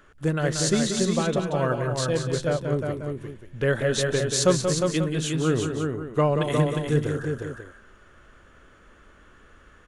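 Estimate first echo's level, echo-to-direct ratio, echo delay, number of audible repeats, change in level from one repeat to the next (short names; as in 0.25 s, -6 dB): -7.5 dB, -2.5 dB, 0.182 s, 5, no steady repeat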